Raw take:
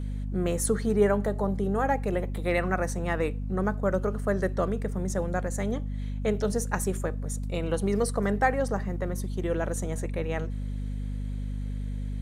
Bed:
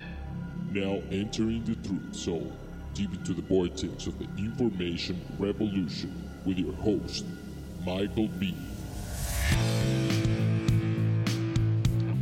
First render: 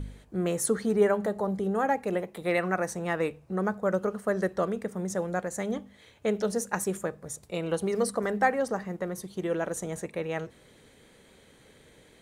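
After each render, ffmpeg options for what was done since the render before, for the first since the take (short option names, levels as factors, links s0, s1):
-af "bandreject=f=50:t=h:w=4,bandreject=f=100:t=h:w=4,bandreject=f=150:t=h:w=4,bandreject=f=200:t=h:w=4,bandreject=f=250:t=h:w=4"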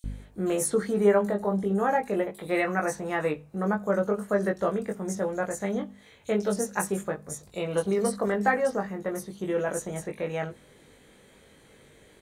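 -filter_complex "[0:a]asplit=2[s0][s1];[s1]adelay=20,volume=0.668[s2];[s0][s2]amix=inputs=2:normalize=0,acrossover=split=4500[s3][s4];[s3]adelay=40[s5];[s5][s4]amix=inputs=2:normalize=0"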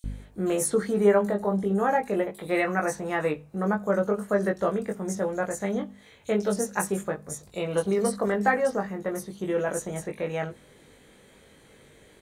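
-af "volume=1.12"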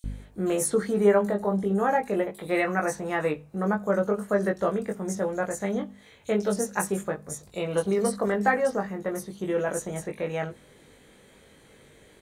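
-af anull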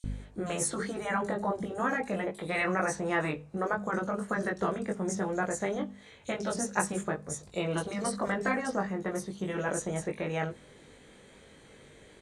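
-af "lowpass=f=9400:w=0.5412,lowpass=f=9400:w=1.3066,afftfilt=real='re*lt(hypot(re,im),0.355)':imag='im*lt(hypot(re,im),0.355)':win_size=1024:overlap=0.75"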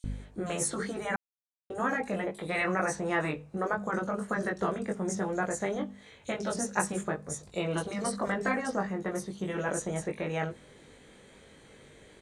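-filter_complex "[0:a]asplit=3[s0][s1][s2];[s0]atrim=end=1.16,asetpts=PTS-STARTPTS,afade=t=out:st=1.156:d=0.004:c=hsin[s3];[s1]atrim=start=1.16:end=1.7,asetpts=PTS-STARTPTS,volume=0[s4];[s2]atrim=start=1.7,asetpts=PTS-STARTPTS,afade=t=in:d=0.004:c=hsin[s5];[s3][s4][s5]concat=n=3:v=0:a=1"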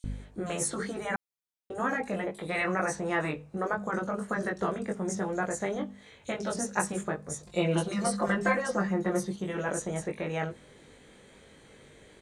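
-filter_complex "[0:a]asettb=1/sr,asplit=3[s0][s1][s2];[s0]atrim=end=7.464[s3];[s1]atrim=start=7.46:end=9.36,asetpts=PTS-STARTPTS,afade=t=in:d=0.004:c=qsin,afade=t=out:st=1.896:d=0.004:c=qsin,aecho=1:1:5.7:0.97,atrim=end_sample=83790[s4];[s2]atrim=start=9.356[s5];[s3][s4]acrossfade=d=0.004:c1=hsin:c2=qsin[s6];[s6][s5]acrossfade=d=0.004:c1=qsin:c2=hsin"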